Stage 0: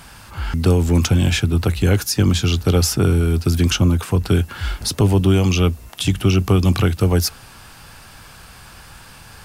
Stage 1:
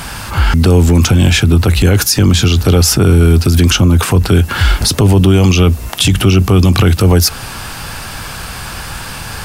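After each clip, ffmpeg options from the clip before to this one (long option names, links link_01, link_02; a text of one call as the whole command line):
ffmpeg -i in.wav -filter_complex "[0:a]asplit=2[link_01][link_02];[link_02]acompressor=threshold=-23dB:ratio=6,volume=-1dB[link_03];[link_01][link_03]amix=inputs=2:normalize=0,alimiter=level_in=12dB:limit=-1dB:release=50:level=0:latency=1,volume=-1dB" out.wav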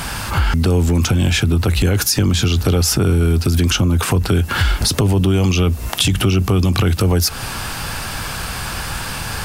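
ffmpeg -i in.wav -af "acompressor=threshold=-14dB:ratio=3" out.wav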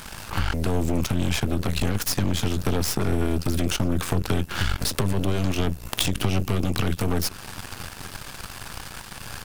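ffmpeg -i in.wav -filter_complex "[0:a]asplit=2[link_01][link_02];[link_02]adelay=932.9,volume=-17dB,highshelf=frequency=4000:gain=-21[link_03];[link_01][link_03]amix=inputs=2:normalize=0,aeval=exprs='0.841*(cos(1*acos(clip(val(0)/0.841,-1,1)))-cos(1*PI/2))+0.237*(cos(3*acos(clip(val(0)/0.841,-1,1)))-cos(3*PI/2))+0.0422*(cos(8*acos(clip(val(0)/0.841,-1,1)))-cos(8*PI/2))':channel_layout=same" out.wav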